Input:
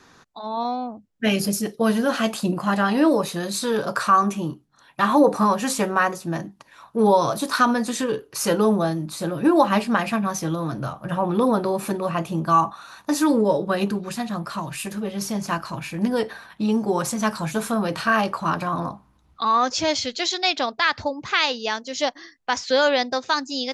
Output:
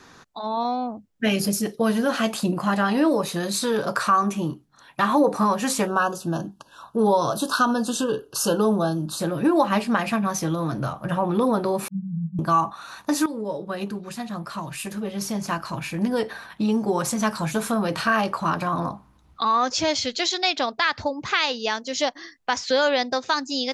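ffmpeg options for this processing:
-filter_complex "[0:a]asettb=1/sr,asplit=3[s0][s1][s2];[s0]atrim=end=5.874[s3];[s1]atrim=start=5.87:end=9.2,asetpts=PTS-STARTPTS,afade=t=in:d=0.004:c=qsin,afade=t=out:st=3.326:d=0.004:c=qsin,asuperstop=centerf=2100:order=20:qfactor=2.3[s4];[s2]atrim=start=9.196[s5];[s3][s4]acrossfade=d=0.004:c1=hsin:c2=qsin[s6];[s6][s5]acrossfade=d=0.004:c1=qsin:c2=hsin,asettb=1/sr,asplit=3[s7][s8][s9];[s7]atrim=end=11.884[s10];[s8]atrim=start=11.88:end=12.39,asetpts=PTS-STARTPTS,afade=t=in:d=0.004:c=qsin,afade=t=out:st=0.506:d=0.004:c=qsin,asuperpass=centerf=170:order=20:qfactor=3.3[s11];[s9]atrim=start=12.386[s12];[s10][s11]acrossfade=d=0.004:c1=hsin:c2=qsin[s13];[s13][s12]acrossfade=d=0.004:c1=qsin:c2=hsin,asplit=2[s14][s15];[s14]atrim=end=13.26,asetpts=PTS-STARTPTS,afade=t=out:st=13.256:d=0.004:c=hsin:silence=0.211349[s16];[s15]atrim=start=13.26,asetpts=PTS-STARTPTS,afade=t=in:d=3.25:silence=0.211349[s17];[s16][s17]concat=n=2:v=0:a=1,acompressor=threshold=0.0398:ratio=1.5,volume=1.41"

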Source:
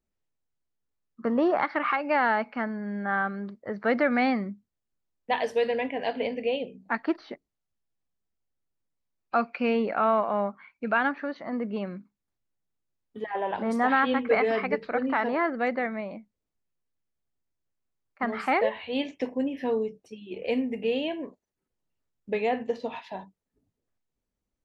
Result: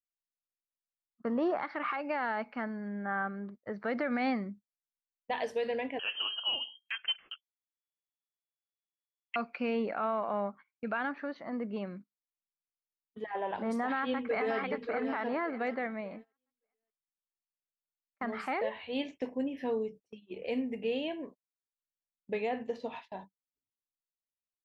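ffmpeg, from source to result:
-filter_complex "[0:a]asettb=1/sr,asplit=3[s0][s1][s2];[s0]atrim=end=2.884[s3];[s1]atrim=start=2.88:end=3.54,asetpts=PTS-STARTPTS,afade=t=in:d=0.004:c=qsin,afade=t=out:st=0.656:d=0.004:c=qsin,equalizer=f=4400:t=o:w=0.86:g=-13.5[s4];[s2]atrim=start=3.536[s5];[s3][s4]acrossfade=d=0.004:c1=hsin:c2=qsin[s6];[s6][s5]acrossfade=d=0.004:c1=qsin:c2=hsin,asettb=1/sr,asplit=3[s7][s8][s9];[s7]atrim=end=5.994[s10];[s8]atrim=start=5.99:end=9.36,asetpts=PTS-STARTPTS,afade=t=in:d=0.004:c=qsin,afade=t=out:st=3.366:d=0.004:c=qsin,lowpass=f=2900:t=q:w=0.5098,lowpass=f=2900:t=q:w=0.6013,lowpass=f=2900:t=q:w=0.9,lowpass=f=2900:t=q:w=2.563,afreqshift=-3400[s11];[s9]atrim=start=9.356[s12];[s10][s11]acrossfade=d=0.004:c1=hsin:c2=qsin[s13];[s13][s12]acrossfade=d=0.004:c1=qsin:c2=hsin,asplit=2[s14][s15];[s15]afade=t=in:st=13.81:d=0.01,afade=t=out:st=14.58:d=0.01,aecho=0:1:580|1160|1740|2320:0.354813|0.124185|0.0434646|0.0152126[s16];[s14][s16]amix=inputs=2:normalize=0,agate=range=0.0631:threshold=0.00794:ratio=16:detection=peak,alimiter=limit=0.126:level=0:latency=1:release=46,volume=0.531"

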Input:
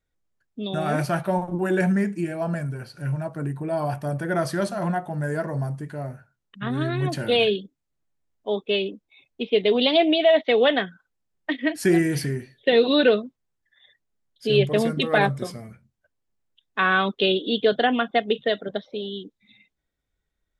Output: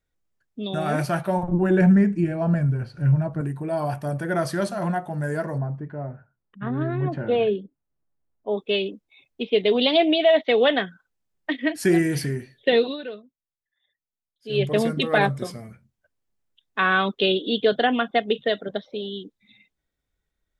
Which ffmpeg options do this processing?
-filter_complex "[0:a]asettb=1/sr,asplit=3[s0][s1][s2];[s0]atrim=end=1.434[s3];[s1]atrim=start=1.43:end=3.41,asetpts=PTS-STARTPTS,afade=t=in:d=0.004:c=qsin,afade=t=out:st=1.976:d=0.004:c=qsin,aemphasis=mode=reproduction:type=bsi[s4];[s2]atrim=start=3.406[s5];[s3][s4]acrossfade=d=0.004:c1=hsin:c2=qsin[s6];[s6][s5]acrossfade=d=0.004:c1=qsin:c2=hsin,asplit=3[s7][s8][s9];[s7]afade=t=out:st=5.57:d=0.02[s10];[s8]lowpass=1400,afade=t=in:st=5.57:d=0.02,afade=t=out:st=8.56:d=0.02[s11];[s9]afade=t=in:st=8.56:d=0.02[s12];[s10][s11][s12]amix=inputs=3:normalize=0,asplit=3[s13][s14][s15];[s13]atrim=end=12.97,asetpts=PTS-STARTPTS,afade=t=out:st=12.74:d=0.23:silence=0.141254[s16];[s14]atrim=start=12.97:end=14.45,asetpts=PTS-STARTPTS,volume=0.141[s17];[s15]atrim=start=14.45,asetpts=PTS-STARTPTS,afade=t=in:d=0.23:silence=0.141254[s18];[s16][s17][s18]concat=n=3:v=0:a=1"

